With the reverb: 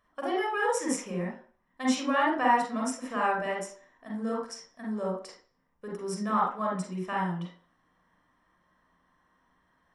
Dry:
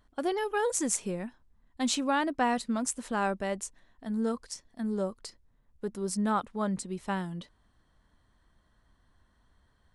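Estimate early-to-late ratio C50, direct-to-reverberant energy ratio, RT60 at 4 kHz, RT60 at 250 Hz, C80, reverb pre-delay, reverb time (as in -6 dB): 2.5 dB, -3.5 dB, 0.40 s, 0.40 s, 8.5 dB, 38 ms, 0.45 s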